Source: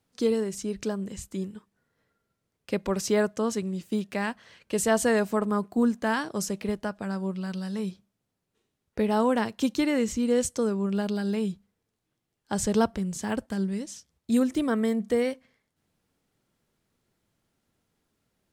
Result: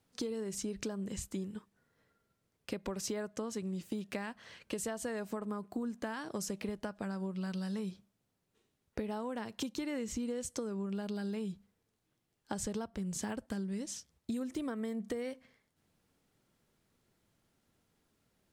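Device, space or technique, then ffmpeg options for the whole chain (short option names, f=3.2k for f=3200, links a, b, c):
serial compression, peaks first: -af "acompressor=threshold=-30dB:ratio=6,acompressor=threshold=-36dB:ratio=2.5"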